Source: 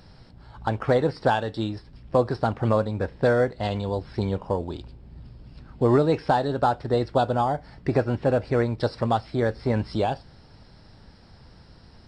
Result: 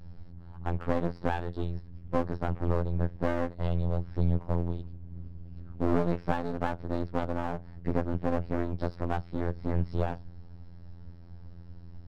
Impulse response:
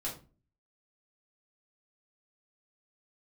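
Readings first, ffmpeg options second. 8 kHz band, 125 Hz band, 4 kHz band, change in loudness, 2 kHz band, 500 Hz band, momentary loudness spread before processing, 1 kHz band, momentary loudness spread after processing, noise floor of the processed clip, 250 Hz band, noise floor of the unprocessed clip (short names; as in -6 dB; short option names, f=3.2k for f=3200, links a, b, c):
n/a, -4.0 dB, -13.5 dB, -7.5 dB, -8.5 dB, -10.0 dB, 8 LU, -10.0 dB, 20 LU, -47 dBFS, -5.0 dB, -51 dBFS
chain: -af "afftfilt=real='hypot(re,im)*cos(PI*b)':imag='0':win_size=2048:overlap=0.75,aemphasis=mode=reproduction:type=riaa,aeval=exprs='max(val(0),0)':c=same,volume=-5.5dB"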